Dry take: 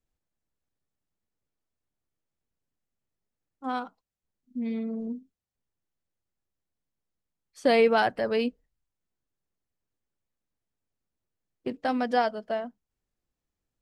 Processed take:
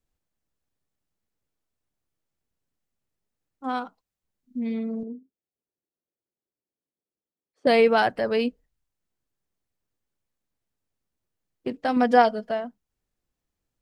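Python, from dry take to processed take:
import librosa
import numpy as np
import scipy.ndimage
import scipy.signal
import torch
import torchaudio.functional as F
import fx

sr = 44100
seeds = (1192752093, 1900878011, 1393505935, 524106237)

y = fx.bandpass_q(x, sr, hz=390.0, q=1.5, at=(5.03, 7.67))
y = fx.comb(y, sr, ms=4.2, depth=0.91, at=(11.96, 12.51))
y = F.gain(torch.from_numpy(y), 2.5).numpy()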